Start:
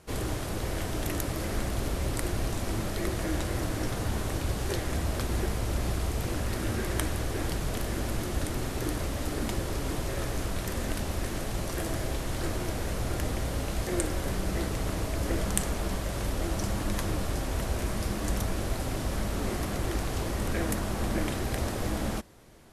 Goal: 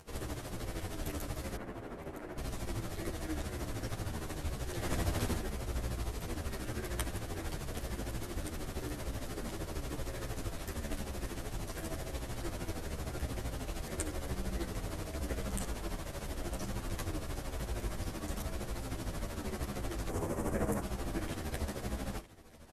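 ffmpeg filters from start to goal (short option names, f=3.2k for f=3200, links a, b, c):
-filter_complex "[0:a]acompressor=mode=upward:threshold=-45dB:ratio=2.5,asettb=1/sr,asplit=3[a][b][c];[a]atrim=end=1.564[d];[b]atrim=start=1.56:end=2.38,asetpts=PTS-STARTPTS,afade=t=in:d=0.004:c=qsin,afade=t=out:st=0.816:d=0.004:c=qsin,acrossover=split=150 2300:gain=0.2 1 0.0794[e][f][g];[e][f][g]amix=inputs=3:normalize=0[h];[c]atrim=start=2.376[i];[d][h]acrossfade=d=0.004:c1=hsin:c2=qsin[j];[j][i]acrossfade=d=0.004:c1=qsin:c2=hsin,asplit=3[k][l][m];[k]afade=t=out:st=4.79:d=0.02[n];[l]acontrast=49,afade=t=in:st=4.79:d=0.02,afade=t=out:st=5.36:d=0.02[o];[m]afade=t=in:st=5.36:d=0.02[p];[n][o][p]amix=inputs=3:normalize=0,asettb=1/sr,asplit=3[q][r][s];[q]atrim=end=20.094[t];[r]atrim=start=20.09:end=20.82,asetpts=PTS-STARTPTS,afade=t=in:d=0.004:c=qsin,afade=t=out:st=0.726:d=0.004:c=qsin,equalizer=f=125:t=o:w=1:g=4,equalizer=f=250:t=o:w=1:g=4,equalizer=f=500:t=o:w=1:g=7,equalizer=f=1k:t=o:w=1:g=5,equalizer=f=4k:t=o:w=1:g=-11,equalizer=f=8k:t=o:w=1:g=5[u];[s]atrim=start=20.816[v];[t][u]acrossfade=d=0.004:c1=hsin:c2=qsin[w];[w][v]acrossfade=d=0.004:c1=qsin:c2=hsin,aecho=1:1:961:0.126,tremolo=f=13:d=0.65,asplit=2[x][y];[y]adelay=10.2,afreqshift=-0.93[z];[x][z]amix=inputs=2:normalize=1,volume=-2.5dB"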